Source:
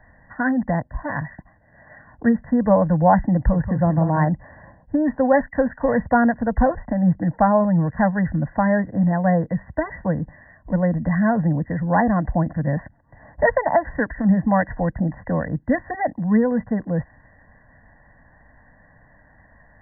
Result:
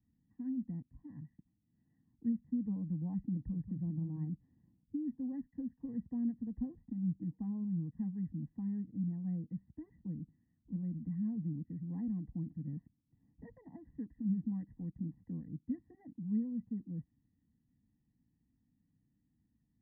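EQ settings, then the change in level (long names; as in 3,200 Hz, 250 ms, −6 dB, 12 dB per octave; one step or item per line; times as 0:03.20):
inverse Chebyshev low-pass filter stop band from 550 Hz, stop band 40 dB
first difference
+14.5 dB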